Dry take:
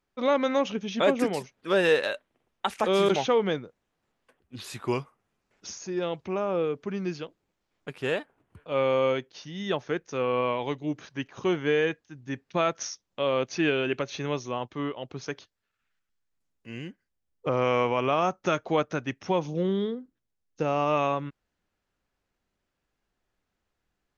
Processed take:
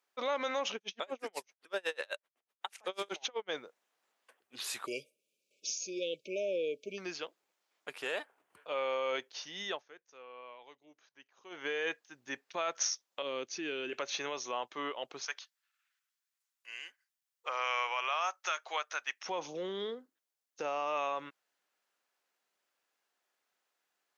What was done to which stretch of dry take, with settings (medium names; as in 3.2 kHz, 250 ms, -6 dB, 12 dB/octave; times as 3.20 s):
0.76–3.50 s: logarithmic tremolo 8 Hz, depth 40 dB
4.86–6.98 s: brick-wall FIR band-stop 630–2200 Hz
9.62–11.71 s: dip -21 dB, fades 0.21 s
13.22–13.93 s: FFT filter 350 Hz 0 dB, 670 Hz -14 dB, 6.1 kHz -5 dB
15.25–19.26 s: high-pass 1.1 kHz
whole clip: peak limiter -22 dBFS; high-pass 580 Hz 12 dB/octave; treble shelf 5.4 kHz +5.5 dB